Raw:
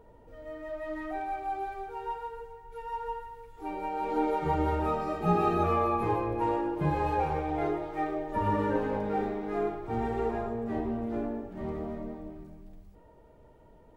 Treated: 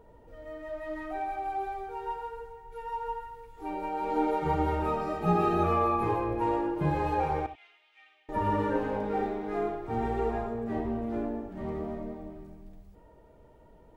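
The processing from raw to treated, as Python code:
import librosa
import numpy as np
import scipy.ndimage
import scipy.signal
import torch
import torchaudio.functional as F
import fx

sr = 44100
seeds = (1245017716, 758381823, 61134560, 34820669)

y = fx.ladder_bandpass(x, sr, hz=3100.0, resonance_pct=65, at=(7.46, 8.29))
y = fx.rev_gated(y, sr, seeds[0], gate_ms=100, shape='rising', drr_db=10.5)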